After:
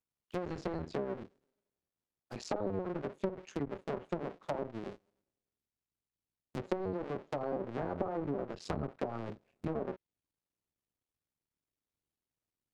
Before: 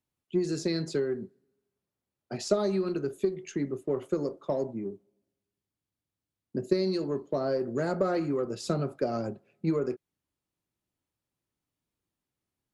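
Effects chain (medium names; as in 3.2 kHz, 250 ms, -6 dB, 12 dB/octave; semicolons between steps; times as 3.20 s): cycle switcher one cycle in 2, muted; low-pass that closes with the level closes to 850 Hz, closed at -26 dBFS; trim -4.5 dB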